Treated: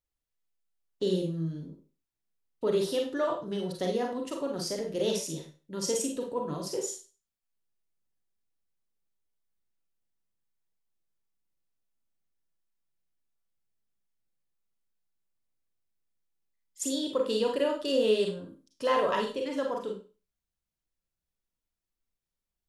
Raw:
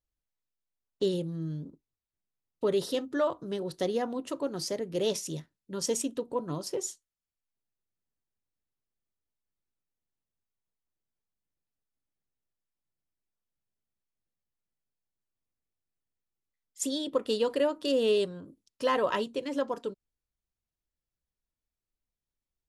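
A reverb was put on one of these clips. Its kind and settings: Schroeder reverb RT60 0.34 s, combs from 33 ms, DRR 1 dB; trim -2 dB

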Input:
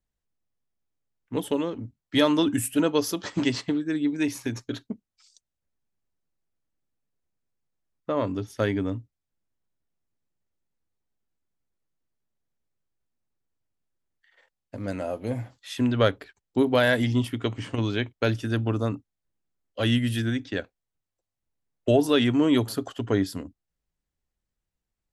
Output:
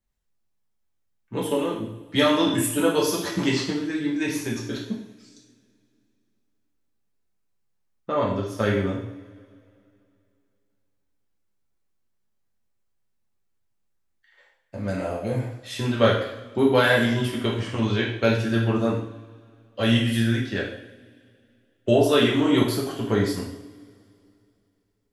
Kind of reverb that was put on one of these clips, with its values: two-slope reverb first 0.66 s, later 2.7 s, from -22 dB, DRR -4.5 dB; trim -1.5 dB

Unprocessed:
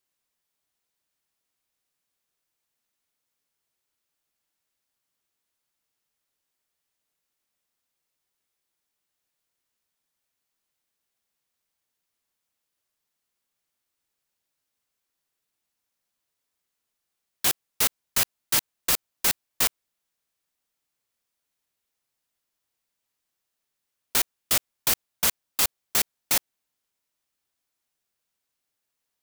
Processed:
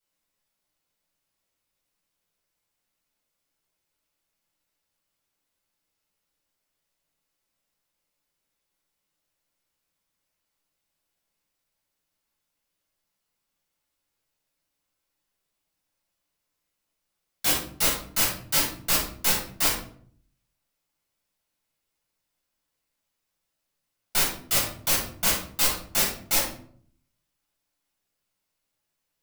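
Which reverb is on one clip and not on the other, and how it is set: simulated room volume 650 m³, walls furnished, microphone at 7.3 m; trim -7 dB

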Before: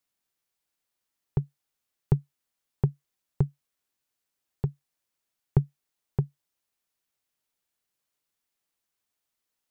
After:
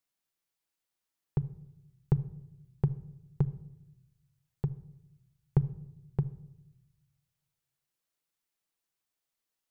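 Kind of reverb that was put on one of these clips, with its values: simulated room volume 2900 m³, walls furnished, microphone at 0.66 m; trim -4 dB

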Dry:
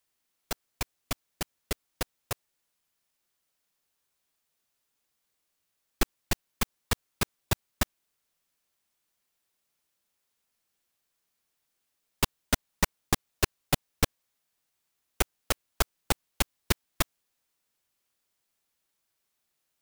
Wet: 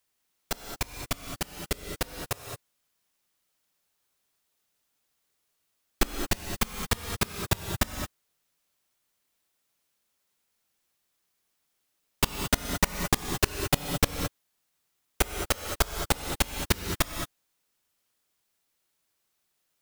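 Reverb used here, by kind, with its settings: gated-style reverb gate 240 ms rising, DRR 5 dB; trim +1.5 dB

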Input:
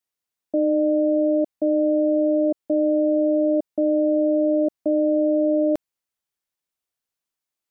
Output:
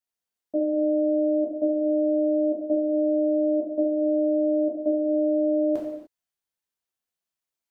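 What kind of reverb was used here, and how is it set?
gated-style reverb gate 320 ms falling, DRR -4 dB; trim -8 dB

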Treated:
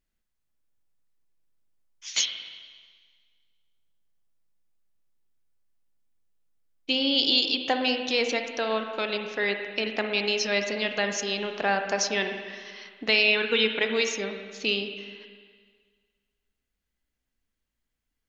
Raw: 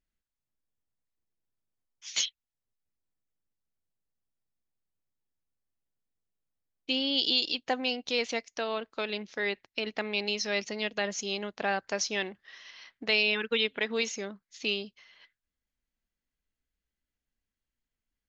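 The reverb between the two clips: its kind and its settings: spring tank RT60 1.7 s, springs 36/55/59 ms, chirp 60 ms, DRR 5 dB; trim +4 dB

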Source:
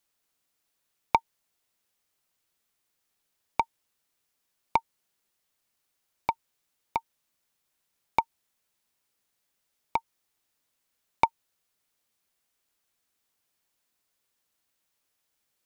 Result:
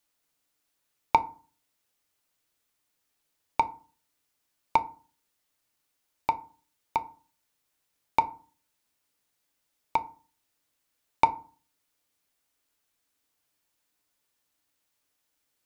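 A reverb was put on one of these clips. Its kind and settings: FDN reverb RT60 0.39 s, low-frequency decay 1.35×, high-frequency decay 0.55×, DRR 8.5 dB

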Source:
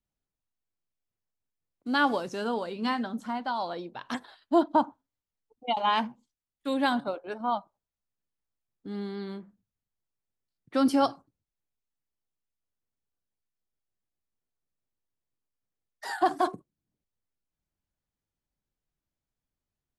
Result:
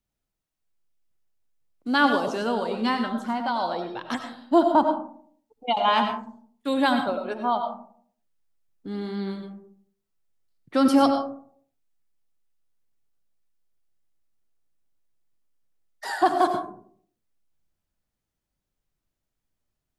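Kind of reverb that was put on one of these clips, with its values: algorithmic reverb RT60 0.57 s, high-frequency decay 0.35×, pre-delay 55 ms, DRR 5.5 dB; trim +4 dB

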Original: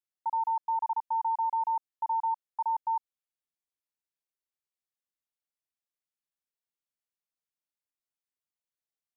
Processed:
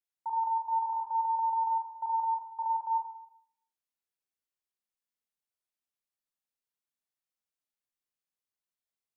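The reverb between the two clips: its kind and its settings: Schroeder reverb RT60 0.66 s, combs from 30 ms, DRR 0 dB; trim -4.5 dB

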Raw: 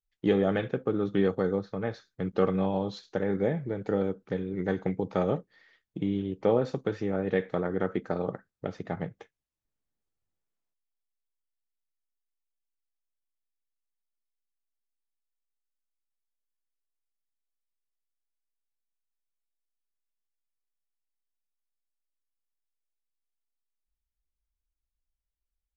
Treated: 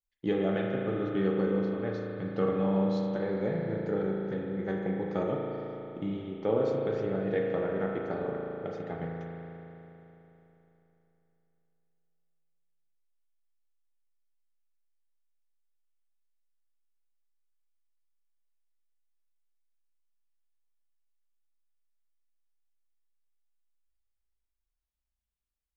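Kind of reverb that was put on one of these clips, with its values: spring tank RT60 3.4 s, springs 36 ms, chirp 45 ms, DRR -1 dB; trim -5.5 dB

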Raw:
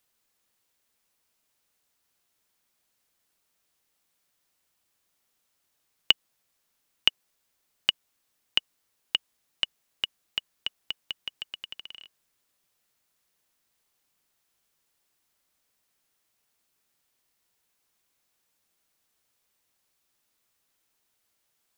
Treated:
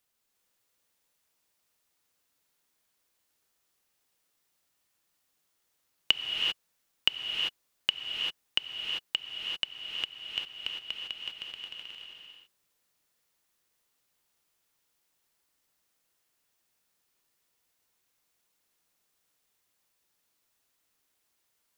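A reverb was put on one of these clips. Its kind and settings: gated-style reverb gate 420 ms rising, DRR -0.5 dB; trim -4 dB

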